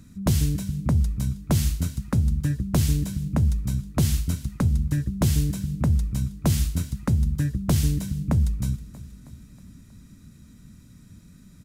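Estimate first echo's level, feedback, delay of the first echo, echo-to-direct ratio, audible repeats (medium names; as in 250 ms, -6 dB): -18.0 dB, 57%, 318 ms, -16.5 dB, 4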